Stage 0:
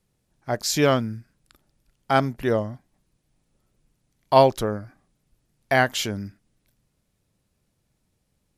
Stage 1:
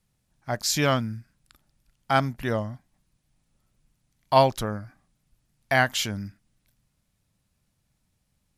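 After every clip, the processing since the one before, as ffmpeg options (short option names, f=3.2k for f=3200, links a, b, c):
-af "equalizer=f=410:w=1.3:g=-8.5"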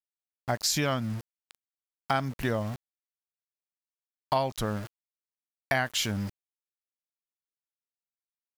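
-af "aeval=exprs='val(0)*gte(abs(val(0)),0.01)':c=same,acompressor=threshold=-27dB:ratio=6,volume=3dB"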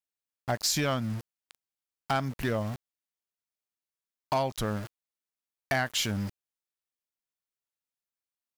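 -af "asoftclip=type=hard:threshold=-20.5dB"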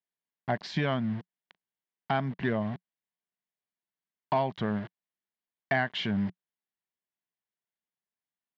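-af "highpass=160,equalizer=f=180:t=q:w=4:g=5,equalizer=f=300:t=q:w=4:g=-6,equalizer=f=520:t=q:w=4:g=-9,equalizer=f=840:t=q:w=4:g=-3,equalizer=f=1.3k:t=q:w=4:g=-10,equalizer=f=2.5k:t=q:w=4:g=-8,lowpass=f=2.9k:w=0.5412,lowpass=f=2.9k:w=1.3066,volume=4.5dB"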